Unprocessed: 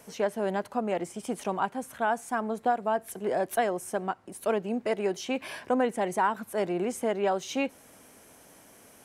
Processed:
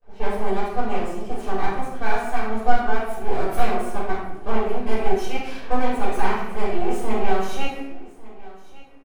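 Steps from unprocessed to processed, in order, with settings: level-controlled noise filter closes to 1 kHz, open at -27 dBFS; gate with hold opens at -47 dBFS; comb 2.6 ms, depth 47%; half-wave rectifier; delay 1152 ms -20 dB; simulated room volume 260 m³, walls mixed, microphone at 5.5 m; trim -8.5 dB

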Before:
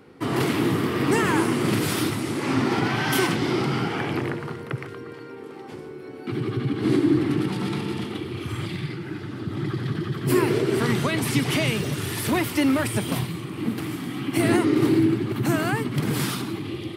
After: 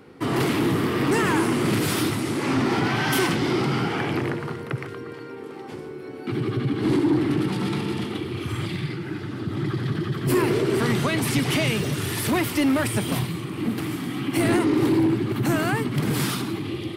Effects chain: saturation -16 dBFS, distortion -17 dB; trim +2 dB

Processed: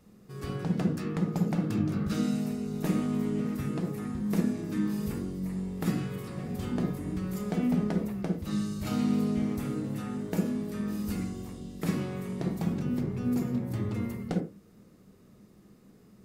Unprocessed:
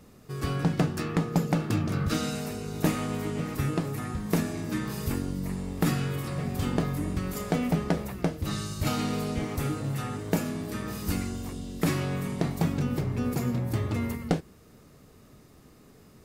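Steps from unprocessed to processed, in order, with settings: on a send: bass shelf 220 Hz +8 dB + reverberation, pre-delay 46 ms, DRR 5 dB; on the sum: trim -8 dB

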